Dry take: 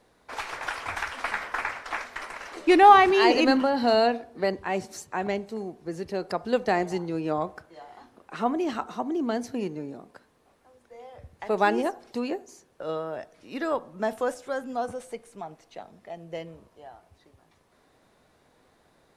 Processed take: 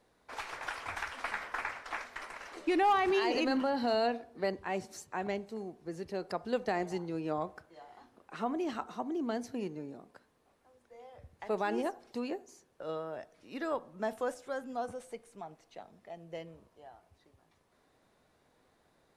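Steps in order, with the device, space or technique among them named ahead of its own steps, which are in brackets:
clipper into limiter (hard clipping −8 dBFS, distortion −23 dB; brickwall limiter −14 dBFS, peak gain reduction 6 dB)
level −7 dB

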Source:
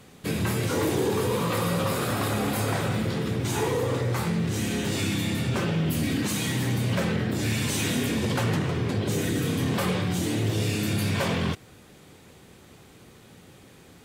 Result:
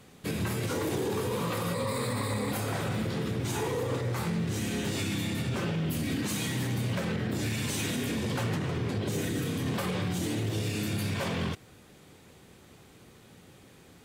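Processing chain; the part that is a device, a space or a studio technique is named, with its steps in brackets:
0:01.74–0:02.52: EQ curve with evenly spaced ripples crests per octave 0.97, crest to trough 13 dB
limiter into clipper (brickwall limiter −18.5 dBFS, peak gain reduction 6.5 dB; hard clipping −20.5 dBFS, distortion −28 dB)
level −3.5 dB

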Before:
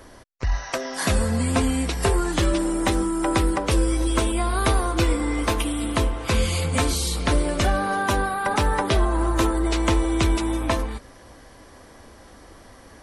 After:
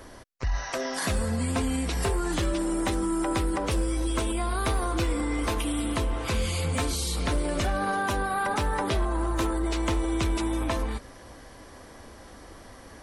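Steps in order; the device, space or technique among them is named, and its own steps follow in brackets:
clipper into limiter (hard clipping −14 dBFS, distortion −24 dB; brickwall limiter −20 dBFS, peak gain reduction 6 dB)

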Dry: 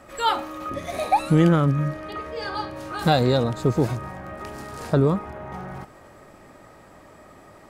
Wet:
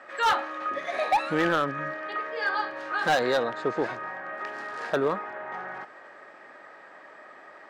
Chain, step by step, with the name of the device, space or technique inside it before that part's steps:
megaphone (band-pass filter 470–3,900 Hz; parametric band 1,700 Hz +10 dB 0.45 octaves; hard clipping −17.5 dBFS, distortion −12 dB)
0:03.37–0:04.33: high-shelf EQ 5,700 Hz −5.5 dB

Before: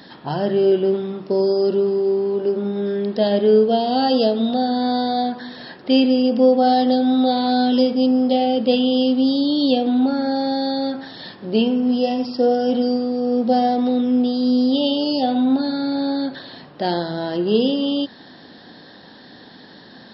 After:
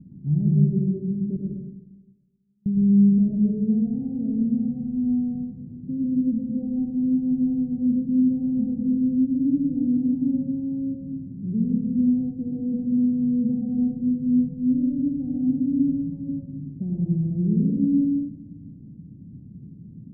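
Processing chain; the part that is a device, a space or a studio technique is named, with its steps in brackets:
0:01.36–0:02.66: elliptic high-pass filter 1,500 Hz, stop band 40 dB
club heard from the street (brickwall limiter −12.5 dBFS, peak gain reduction 8 dB; low-pass filter 170 Hz 24 dB per octave; convolution reverb RT60 1.1 s, pre-delay 83 ms, DRR −2 dB)
level +9 dB

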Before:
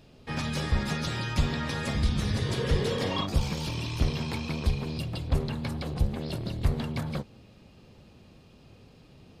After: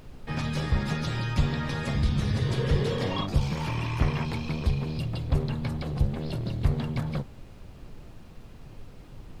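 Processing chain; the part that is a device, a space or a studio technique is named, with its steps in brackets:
car interior (parametric band 130 Hz +5.5 dB 0.5 octaves; high-shelf EQ 4,900 Hz −6.5 dB; brown noise bed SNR 15 dB)
0:03.55–0:04.25: octave-band graphic EQ 1,000/2,000/4,000 Hz +7/+8/−6 dB

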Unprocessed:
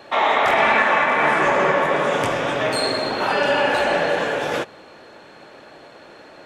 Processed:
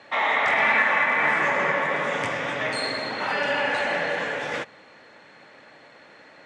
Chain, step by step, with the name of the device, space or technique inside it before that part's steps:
car door speaker (loudspeaker in its box 96–8,800 Hz, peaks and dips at 370 Hz −7 dB, 670 Hz −3 dB, 2,000 Hz +9 dB)
level −6 dB

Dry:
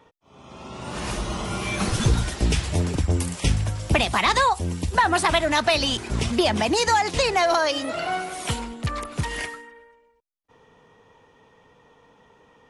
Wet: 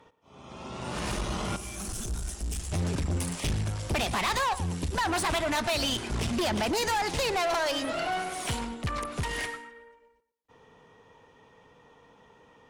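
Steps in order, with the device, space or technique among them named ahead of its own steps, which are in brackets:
rockabilly slapback (tube saturation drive 25 dB, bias 0.45; tape delay 113 ms, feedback 33%, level −13 dB, low-pass 3,500 Hz)
0:01.56–0:02.72: octave-band graphic EQ 125/250/500/1,000/2,000/4,000/8,000 Hz −12/−5/−9/−8/−11/−10/+4 dB

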